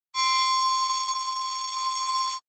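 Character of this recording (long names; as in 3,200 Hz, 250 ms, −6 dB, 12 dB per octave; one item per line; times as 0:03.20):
a buzz of ramps at a fixed pitch in blocks of 8 samples
tremolo saw up 0.88 Hz, depth 40%
a quantiser's noise floor 12 bits, dither none
Opus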